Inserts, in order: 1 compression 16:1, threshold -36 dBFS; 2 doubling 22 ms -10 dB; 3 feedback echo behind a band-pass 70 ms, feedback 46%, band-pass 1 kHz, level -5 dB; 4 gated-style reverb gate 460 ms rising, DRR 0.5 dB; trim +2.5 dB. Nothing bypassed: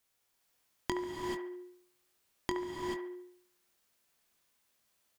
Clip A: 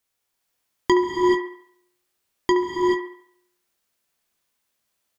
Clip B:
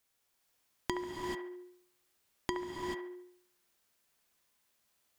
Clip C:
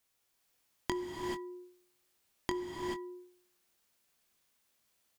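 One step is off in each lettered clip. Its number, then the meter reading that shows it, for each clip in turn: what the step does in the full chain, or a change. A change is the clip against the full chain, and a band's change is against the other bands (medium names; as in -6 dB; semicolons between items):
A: 1, mean gain reduction 9.0 dB; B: 2, 500 Hz band -1.5 dB; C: 3, echo-to-direct 1.5 dB to -0.5 dB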